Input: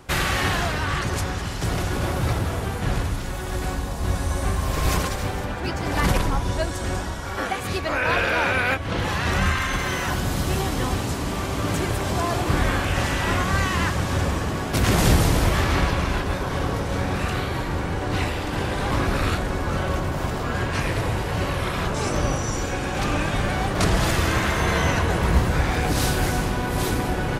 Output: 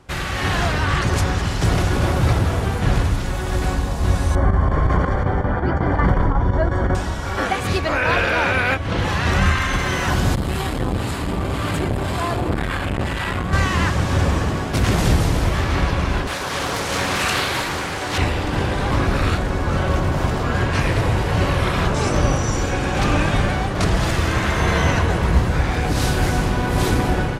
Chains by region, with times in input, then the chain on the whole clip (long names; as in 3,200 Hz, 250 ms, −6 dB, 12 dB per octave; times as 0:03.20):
0:04.35–0:06.95: square-wave tremolo 5.5 Hz, depth 65%, duty 85% + Savitzky-Golay smoothing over 41 samples + envelope flattener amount 50%
0:10.35–0:13.53: parametric band 5,900 Hz −10 dB 0.36 octaves + two-band tremolo in antiphase 1.9 Hz, depth 50%, crossover 920 Hz + saturating transformer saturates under 450 Hz
0:16.27–0:18.18: spectral tilt +3.5 dB per octave + highs frequency-modulated by the lows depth 0.35 ms
whole clip: parametric band 69 Hz +2.5 dB 2.8 octaves; automatic gain control; high-shelf EQ 12,000 Hz −11.5 dB; level −4 dB